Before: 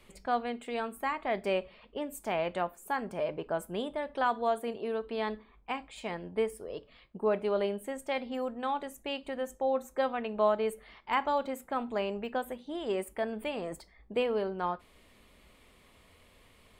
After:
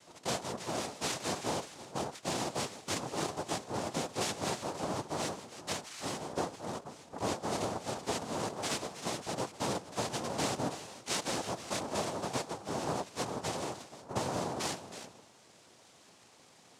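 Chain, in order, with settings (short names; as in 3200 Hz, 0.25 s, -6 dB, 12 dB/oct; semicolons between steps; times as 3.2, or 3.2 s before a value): compressor 4:1, threshold -34 dBFS, peak gain reduction 11 dB; harmoniser +5 st -3 dB; on a send: delay with a stepping band-pass 0.159 s, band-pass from 2700 Hz, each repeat -1.4 oct, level -7 dB; on the sum: noise vocoder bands 2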